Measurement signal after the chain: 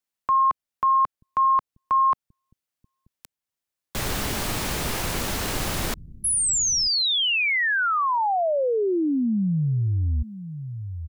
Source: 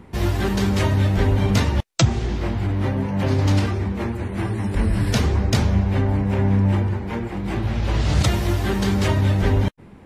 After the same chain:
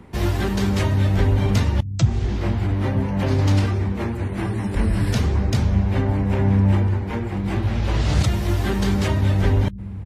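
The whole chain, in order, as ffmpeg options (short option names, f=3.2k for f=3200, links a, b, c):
-filter_complex "[0:a]acrossover=split=210[a][b];[a]aecho=1:1:933:0.335[c];[b]alimiter=limit=-15.5dB:level=0:latency=1:release=420[d];[c][d]amix=inputs=2:normalize=0"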